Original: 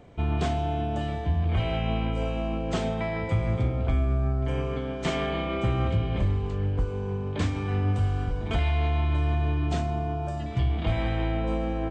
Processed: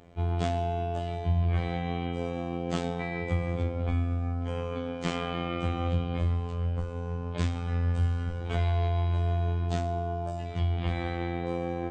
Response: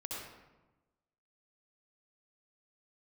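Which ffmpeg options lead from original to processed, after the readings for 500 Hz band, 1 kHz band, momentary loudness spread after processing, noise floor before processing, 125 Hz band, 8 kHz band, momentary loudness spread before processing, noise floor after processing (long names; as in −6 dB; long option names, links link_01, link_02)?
−2.5 dB, −2.0 dB, 5 LU, −32 dBFS, −2.5 dB, can't be measured, 4 LU, −35 dBFS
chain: -filter_complex "[0:a]asplit=2[link_01][link_02];[1:a]atrim=start_sample=2205,lowshelf=frequency=98:gain=-9.5[link_03];[link_02][link_03]afir=irnorm=-1:irlink=0,volume=-14.5dB[link_04];[link_01][link_04]amix=inputs=2:normalize=0,afftfilt=real='hypot(re,im)*cos(PI*b)':imag='0':win_size=2048:overlap=0.75"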